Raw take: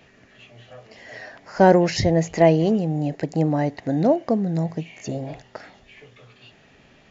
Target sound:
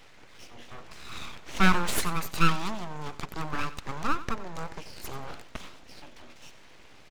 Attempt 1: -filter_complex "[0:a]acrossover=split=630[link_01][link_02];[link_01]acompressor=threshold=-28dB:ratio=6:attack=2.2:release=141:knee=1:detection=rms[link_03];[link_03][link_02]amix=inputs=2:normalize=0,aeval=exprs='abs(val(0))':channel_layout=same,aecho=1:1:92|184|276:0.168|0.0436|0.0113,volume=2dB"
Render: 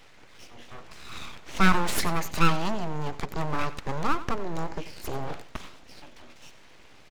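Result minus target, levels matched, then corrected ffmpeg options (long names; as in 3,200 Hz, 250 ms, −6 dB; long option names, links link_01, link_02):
downward compressor: peak gain reduction −10 dB
-filter_complex "[0:a]acrossover=split=630[link_01][link_02];[link_01]acompressor=threshold=-40dB:ratio=6:attack=2.2:release=141:knee=1:detection=rms[link_03];[link_03][link_02]amix=inputs=2:normalize=0,aeval=exprs='abs(val(0))':channel_layout=same,aecho=1:1:92|184|276:0.168|0.0436|0.0113,volume=2dB"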